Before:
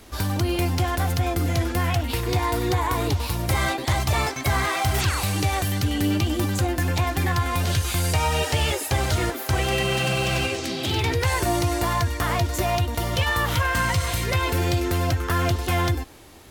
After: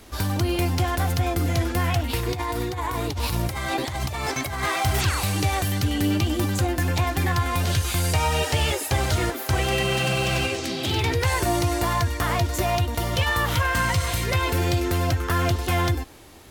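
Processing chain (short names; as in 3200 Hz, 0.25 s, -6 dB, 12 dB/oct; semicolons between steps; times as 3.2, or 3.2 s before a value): 2.32–4.63 negative-ratio compressor -27 dBFS, ratio -1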